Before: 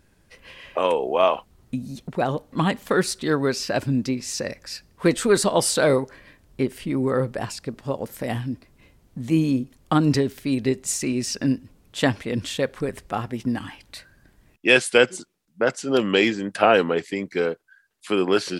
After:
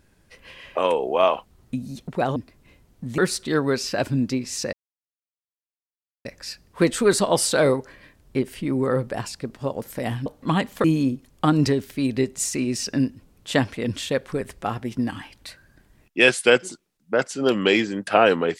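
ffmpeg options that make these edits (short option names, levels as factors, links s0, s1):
-filter_complex "[0:a]asplit=6[s0][s1][s2][s3][s4][s5];[s0]atrim=end=2.362[s6];[s1]atrim=start=8.498:end=9.322[s7];[s2]atrim=start=2.938:end=4.49,asetpts=PTS-STARTPTS,afade=t=out:st=1.548:d=0.004:c=hsin,apad=pad_dur=1.52[s8];[s3]atrim=start=4.49:end=8.502,asetpts=PTS-STARTPTS,afade=t=in:d=0.004:c=hsin[s9];[s4]atrim=start=2.358:end=2.942[s10];[s5]atrim=start=9.318[s11];[s6][s7]acrossfade=d=0.004:c1=hsin:c2=hsin[s12];[s8][s9]concat=n=2:v=0:a=1[s13];[s12][s13]acrossfade=d=0.004:c1=hsin:c2=hsin[s14];[s14][s10]acrossfade=d=0.004:c1=hsin:c2=hsin[s15];[s15][s11]acrossfade=d=0.004:c1=hsin:c2=hsin"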